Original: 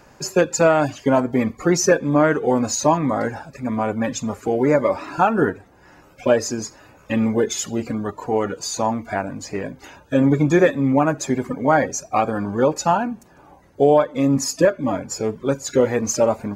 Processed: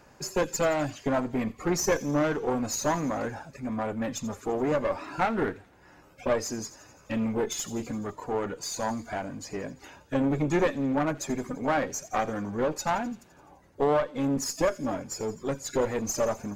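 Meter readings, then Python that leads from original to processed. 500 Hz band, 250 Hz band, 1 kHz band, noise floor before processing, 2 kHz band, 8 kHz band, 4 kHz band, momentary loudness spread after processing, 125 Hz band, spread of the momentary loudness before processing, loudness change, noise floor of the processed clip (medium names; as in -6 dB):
-9.5 dB, -9.5 dB, -9.0 dB, -51 dBFS, -8.5 dB, -7.5 dB, -7.0 dB, 9 LU, -9.5 dB, 11 LU, -9.0 dB, -57 dBFS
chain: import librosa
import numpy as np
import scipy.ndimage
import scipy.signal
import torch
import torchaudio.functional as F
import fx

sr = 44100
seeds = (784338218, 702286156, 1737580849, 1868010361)

y = fx.diode_clip(x, sr, knee_db=-21.0)
y = fx.echo_wet_highpass(y, sr, ms=85, feedback_pct=65, hz=3400.0, wet_db=-14)
y = y * librosa.db_to_amplitude(-6.0)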